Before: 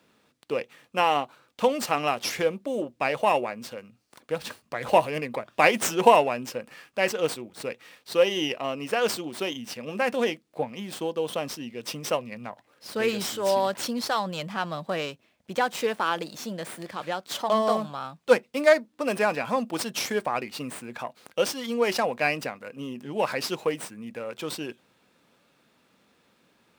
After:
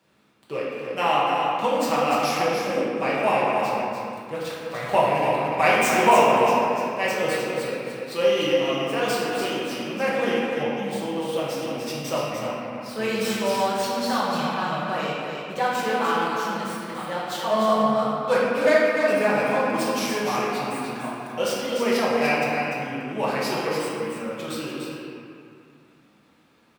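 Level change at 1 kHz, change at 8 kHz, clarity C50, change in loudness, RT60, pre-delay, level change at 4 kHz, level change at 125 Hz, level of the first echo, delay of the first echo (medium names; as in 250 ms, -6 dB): +4.5 dB, +0.5 dB, -3.5 dB, +3.5 dB, 2.3 s, 5 ms, +2.0 dB, +5.0 dB, -6.0 dB, 295 ms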